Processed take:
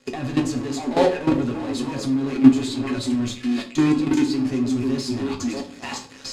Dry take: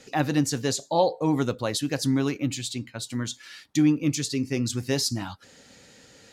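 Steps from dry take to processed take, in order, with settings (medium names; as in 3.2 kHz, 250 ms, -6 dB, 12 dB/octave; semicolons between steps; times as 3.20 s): repeats whose band climbs or falls 316 ms, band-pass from 320 Hz, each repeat 1.4 oct, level -2.5 dB; in parallel at -7 dB: fuzz box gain 41 dB, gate -47 dBFS; on the sum: low-pass 7.6 kHz 12 dB/octave; band-stop 5.8 kHz, Q 12; de-hum 95.91 Hz, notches 6; level held to a coarse grid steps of 15 dB; small resonant body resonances 250/380/1100/2500 Hz, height 8 dB, ringing for 60 ms; on a send at -3 dB: reverberation RT60 0.40 s, pre-delay 6 ms; on the sum: trim -3 dB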